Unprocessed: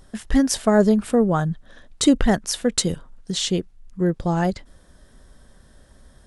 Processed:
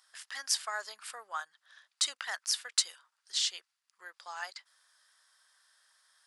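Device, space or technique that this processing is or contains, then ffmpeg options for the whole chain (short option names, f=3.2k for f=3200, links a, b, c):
headphones lying on a table: -af "highpass=f=1.1k:w=0.5412,highpass=f=1.1k:w=1.3066,equalizer=f=4.8k:t=o:w=0.33:g=6.5,volume=-7dB"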